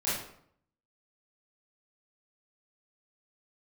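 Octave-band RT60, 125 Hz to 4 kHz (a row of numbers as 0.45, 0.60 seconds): 0.80, 0.75, 0.65, 0.65, 0.55, 0.45 seconds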